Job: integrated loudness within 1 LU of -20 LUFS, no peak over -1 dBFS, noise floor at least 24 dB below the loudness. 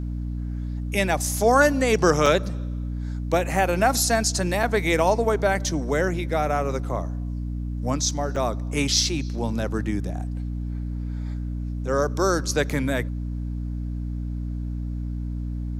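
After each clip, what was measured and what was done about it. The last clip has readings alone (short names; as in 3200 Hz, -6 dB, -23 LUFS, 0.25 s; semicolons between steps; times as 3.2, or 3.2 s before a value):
dropouts 4; longest dropout 3.5 ms; hum 60 Hz; harmonics up to 300 Hz; hum level -26 dBFS; loudness -24.5 LUFS; peak -5.0 dBFS; loudness target -20.0 LUFS
-> interpolate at 2.26/4.63/8.36/12.7, 3.5 ms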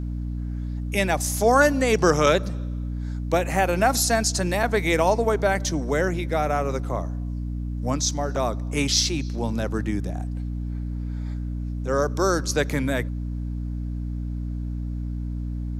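dropouts 0; hum 60 Hz; harmonics up to 300 Hz; hum level -26 dBFS
-> de-hum 60 Hz, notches 5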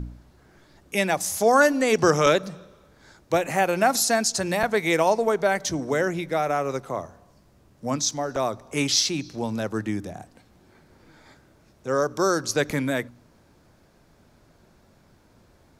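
hum none; loudness -23.5 LUFS; peak -5.5 dBFS; loudness target -20.0 LUFS
-> gain +3.5 dB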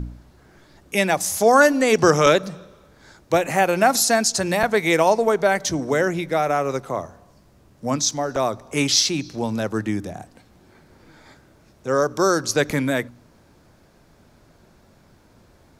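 loudness -20.0 LUFS; peak -2.0 dBFS; noise floor -55 dBFS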